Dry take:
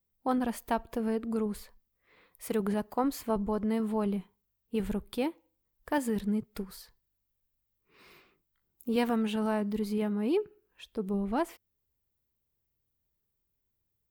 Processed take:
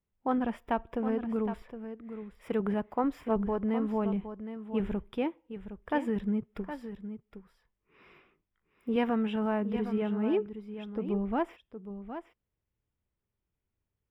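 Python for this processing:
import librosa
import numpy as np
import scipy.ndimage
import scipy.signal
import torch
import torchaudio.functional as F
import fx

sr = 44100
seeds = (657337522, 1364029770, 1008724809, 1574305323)

p1 = scipy.signal.savgol_filter(x, 25, 4, mode='constant')
y = p1 + fx.echo_single(p1, sr, ms=765, db=-10.5, dry=0)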